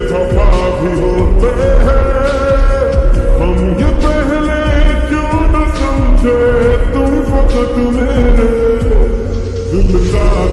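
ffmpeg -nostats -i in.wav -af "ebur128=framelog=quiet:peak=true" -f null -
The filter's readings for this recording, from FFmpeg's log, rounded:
Integrated loudness:
  I:         -12.5 LUFS
  Threshold: -22.5 LUFS
Loudness range:
  LRA:         1.0 LU
  Threshold: -32.5 LUFS
  LRA low:   -12.9 LUFS
  LRA high:  -12.0 LUFS
True peak:
  Peak:       -1.7 dBFS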